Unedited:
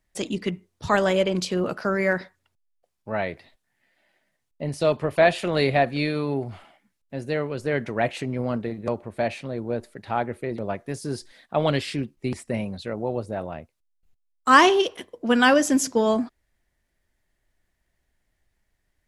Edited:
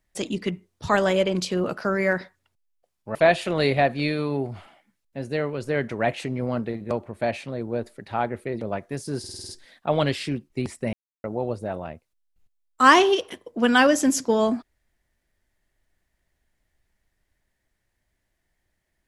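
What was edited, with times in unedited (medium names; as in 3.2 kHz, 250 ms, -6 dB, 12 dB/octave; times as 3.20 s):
3.15–5.12 s: delete
11.16 s: stutter 0.05 s, 7 plays
12.60–12.91 s: mute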